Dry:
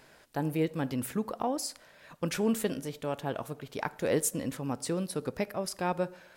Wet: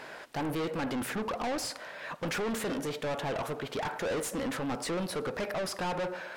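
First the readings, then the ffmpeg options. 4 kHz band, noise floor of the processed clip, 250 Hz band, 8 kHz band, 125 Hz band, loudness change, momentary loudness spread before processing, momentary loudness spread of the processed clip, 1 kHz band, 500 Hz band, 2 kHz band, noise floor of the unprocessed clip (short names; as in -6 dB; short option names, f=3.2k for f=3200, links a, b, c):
+3.5 dB, -46 dBFS, -2.5 dB, -3.5 dB, -3.5 dB, -1.0 dB, 8 LU, 3 LU, +1.5 dB, -0.5 dB, +4.5 dB, -59 dBFS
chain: -filter_complex "[0:a]asplit=2[a][b];[b]highpass=f=720:p=1,volume=24dB,asoftclip=type=tanh:threshold=-14dB[c];[a][c]amix=inputs=2:normalize=0,lowpass=f=1.6k:p=1,volume=-6dB,asoftclip=type=tanh:threshold=-30dB"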